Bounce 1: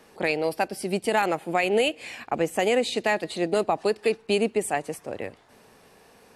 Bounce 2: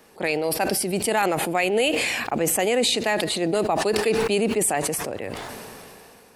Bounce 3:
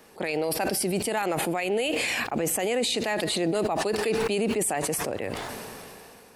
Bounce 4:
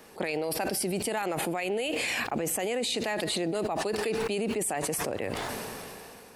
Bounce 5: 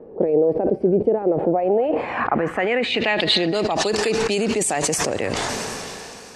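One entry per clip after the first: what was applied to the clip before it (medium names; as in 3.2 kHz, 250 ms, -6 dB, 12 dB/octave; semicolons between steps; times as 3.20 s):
treble shelf 11 kHz +10 dB; decay stretcher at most 21 dB/s
peak limiter -17.5 dBFS, peak gain reduction 10.5 dB
compression, threshold -28 dBFS, peak gain reduction 6.5 dB; trim +1.5 dB
low-pass sweep 470 Hz -> 6.7 kHz, 1.33–3.88 s; repeats whose band climbs or falls 253 ms, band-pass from 1.5 kHz, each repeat 1.4 oct, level -11 dB; trim +8.5 dB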